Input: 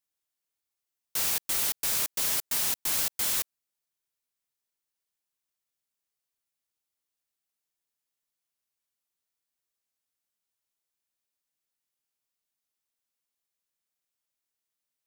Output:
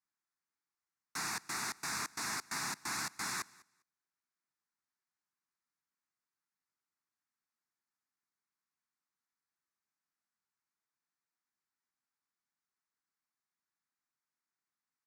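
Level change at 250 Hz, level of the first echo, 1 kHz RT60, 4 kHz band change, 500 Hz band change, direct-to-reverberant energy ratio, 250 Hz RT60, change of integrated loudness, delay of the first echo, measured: −1.0 dB, −23.5 dB, no reverb audible, −8.5 dB, −9.0 dB, no reverb audible, no reverb audible, −11.5 dB, 201 ms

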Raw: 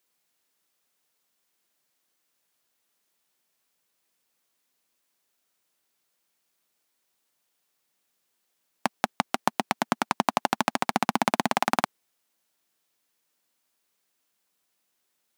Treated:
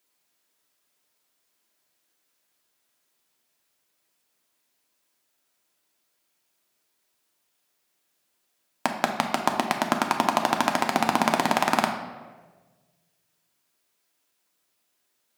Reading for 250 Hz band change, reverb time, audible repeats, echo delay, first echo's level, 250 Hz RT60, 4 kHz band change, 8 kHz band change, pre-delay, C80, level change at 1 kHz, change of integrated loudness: +2.5 dB, 1.4 s, no echo audible, no echo audible, no echo audible, 1.5 s, +2.5 dB, +2.0 dB, 3 ms, 8.5 dB, +2.5 dB, +2.5 dB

